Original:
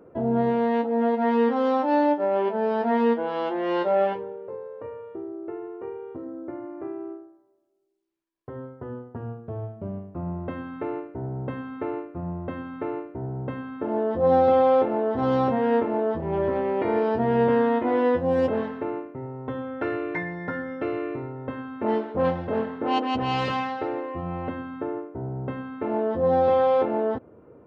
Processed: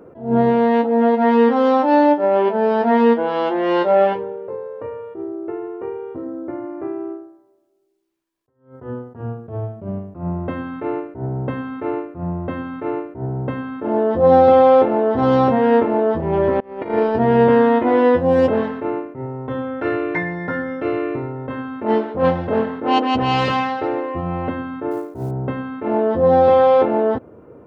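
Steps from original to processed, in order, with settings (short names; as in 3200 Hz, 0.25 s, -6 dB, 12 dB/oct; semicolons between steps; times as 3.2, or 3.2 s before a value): 16.6–17.15 gate -22 dBFS, range -27 dB; 24.91–25.31 short-mantissa float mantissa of 4-bit; attack slew limiter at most 150 dB/s; gain +7.5 dB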